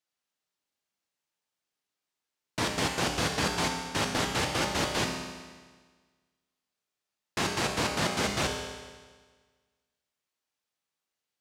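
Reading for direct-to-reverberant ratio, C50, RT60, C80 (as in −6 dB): 1.0 dB, 4.0 dB, 1.5 s, 5.5 dB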